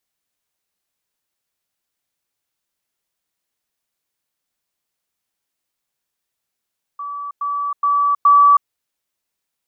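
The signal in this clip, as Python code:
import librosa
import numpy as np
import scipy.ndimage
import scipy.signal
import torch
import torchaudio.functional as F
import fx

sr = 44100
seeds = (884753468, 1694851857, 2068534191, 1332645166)

y = fx.level_ladder(sr, hz=1150.0, from_db=-25.0, step_db=6.0, steps=4, dwell_s=0.32, gap_s=0.1)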